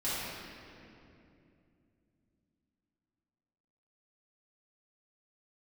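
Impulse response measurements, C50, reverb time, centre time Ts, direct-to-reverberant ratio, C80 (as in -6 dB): -5.0 dB, 2.7 s, 0.168 s, -12.5 dB, -2.0 dB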